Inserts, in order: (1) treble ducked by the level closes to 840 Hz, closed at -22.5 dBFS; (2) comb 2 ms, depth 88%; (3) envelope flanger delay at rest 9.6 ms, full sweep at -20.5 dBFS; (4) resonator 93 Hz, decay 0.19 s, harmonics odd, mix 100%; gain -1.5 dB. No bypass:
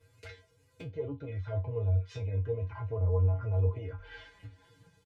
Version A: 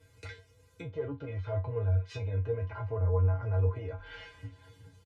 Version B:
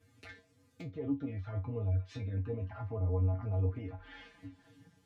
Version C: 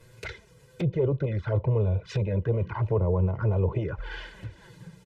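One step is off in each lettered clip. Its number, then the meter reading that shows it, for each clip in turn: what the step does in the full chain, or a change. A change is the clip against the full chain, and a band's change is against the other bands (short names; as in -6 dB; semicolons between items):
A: 3, 1 kHz band +3.0 dB; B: 2, 250 Hz band +11.0 dB; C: 4, 250 Hz band +6.5 dB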